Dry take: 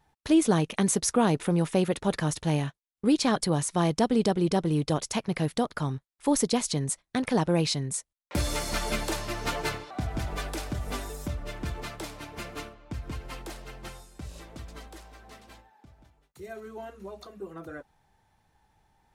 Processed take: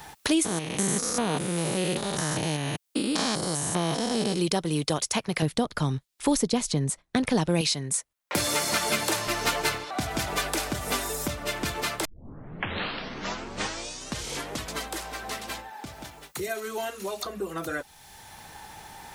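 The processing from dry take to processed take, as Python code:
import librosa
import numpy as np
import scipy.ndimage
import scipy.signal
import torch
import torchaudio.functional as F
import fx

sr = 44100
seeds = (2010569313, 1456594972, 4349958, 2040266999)

y = fx.spec_steps(x, sr, hold_ms=200, at=(0.44, 4.38), fade=0.02)
y = fx.tilt_eq(y, sr, slope=-3.0, at=(5.42, 7.61))
y = fx.highpass(y, sr, hz=89.0, slope=24, at=(8.35, 9.27))
y = fx.bessel_highpass(y, sr, hz=260.0, order=2, at=(16.48, 17.25))
y = fx.edit(y, sr, fx.tape_start(start_s=12.05, length_s=2.7), tone=tone)
y = fx.tilt_eq(y, sr, slope=2.0)
y = fx.band_squash(y, sr, depth_pct=70)
y = y * librosa.db_to_amplitude(3.5)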